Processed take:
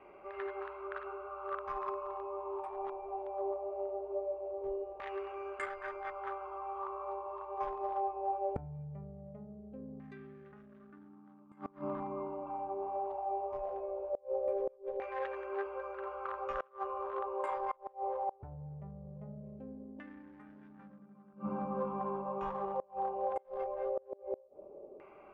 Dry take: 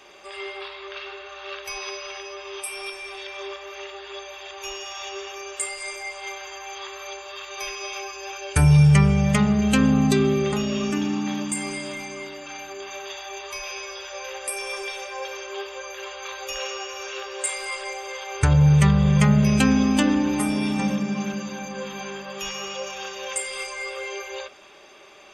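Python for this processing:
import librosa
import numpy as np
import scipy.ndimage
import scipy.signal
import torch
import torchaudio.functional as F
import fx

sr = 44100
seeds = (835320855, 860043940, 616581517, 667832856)

y = fx.wiener(x, sr, points=25)
y = fx.filter_lfo_lowpass(y, sr, shape='saw_down', hz=0.2, low_hz=490.0, high_hz=1900.0, q=3.8)
y = fx.gate_flip(y, sr, shuts_db=-21.0, range_db=-28)
y = y * librosa.db_to_amplitude(-3.5)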